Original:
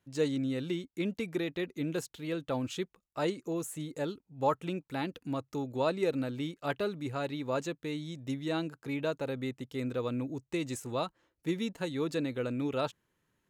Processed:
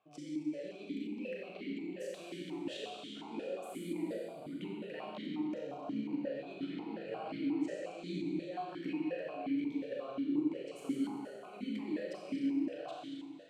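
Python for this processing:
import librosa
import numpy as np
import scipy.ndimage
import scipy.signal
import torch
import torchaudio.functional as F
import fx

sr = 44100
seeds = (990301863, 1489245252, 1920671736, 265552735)

y = fx.pitch_heads(x, sr, semitones=2.0)
y = fx.over_compress(y, sr, threshold_db=-43.0, ratio=-1.0)
y = fx.rev_schroeder(y, sr, rt60_s=2.4, comb_ms=29, drr_db=-4.5)
y = fx.vowel_held(y, sr, hz=5.6)
y = y * 10.0 ** (8.0 / 20.0)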